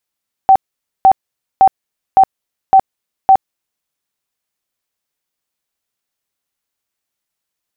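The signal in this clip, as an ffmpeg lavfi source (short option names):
-f lavfi -i "aevalsrc='0.708*sin(2*PI*770*mod(t,0.56))*lt(mod(t,0.56),51/770)':d=3.36:s=44100"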